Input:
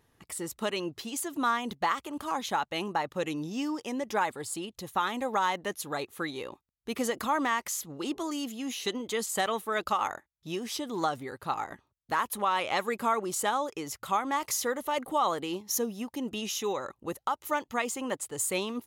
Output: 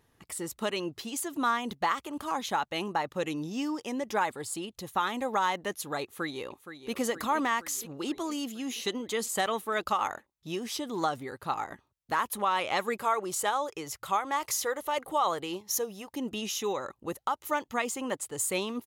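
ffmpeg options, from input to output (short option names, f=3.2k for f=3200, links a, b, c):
-filter_complex "[0:a]asplit=2[a][b];[b]afade=t=in:st=6.03:d=0.01,afade=t=out:st=6.95:d=0.01,aecho=0:1:470|940|1410|1880|2350|2820|3290|3760:0.281838|0.183195|0.119077|0.0773998|0.0503099|0.0327014|0.0212559|0.0138164[c];[a][c]amix=inputs=2:normalize=0,asettb=1/sr,asplit=3[d][e][f];[d]atrim=end=12.984[g];[e]atrim=start=12.98:end=16.1,asetpts=PTS-STARTPTS,afade=t=in:d=0.004:c=qsin,afade=t=out:st=3.116:d=0.004:c=qsin,equalizer=f=240:t=o:w=0.4:g=-13[h];[f]atrim=start=16.096[i];[g][h]acrossfade=d=0.004:c1=hsin:c2=qsin[j];[j][i]acrossfade=d=0.004:c1=qsin:c2=hsin"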